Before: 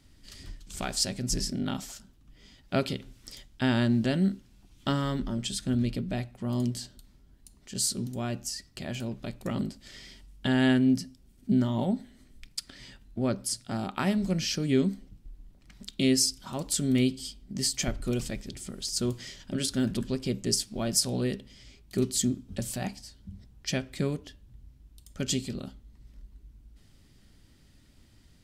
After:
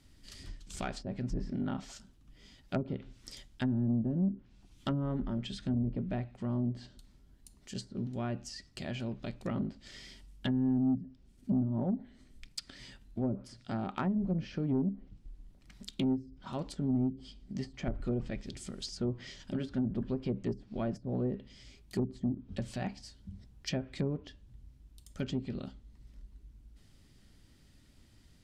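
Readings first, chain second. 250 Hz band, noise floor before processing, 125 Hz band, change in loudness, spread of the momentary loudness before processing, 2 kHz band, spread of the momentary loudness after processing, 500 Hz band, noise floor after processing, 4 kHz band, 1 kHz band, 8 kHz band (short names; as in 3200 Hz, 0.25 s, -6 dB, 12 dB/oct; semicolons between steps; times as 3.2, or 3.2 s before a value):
-4.5 dB, -59 dBFS, -3.5 dB, -6.0 dB, 19 LU, -10.5 dB, 18 LU, -6.0 dB, -61 dBFS, -13.5 dB, -6.0 dB, -20.5 dB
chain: treble ducked by the level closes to 320 Hz, closed at -22 dBFS; soft clip -19.5 dBFS, distortion -19 dB; gain -2.5 dB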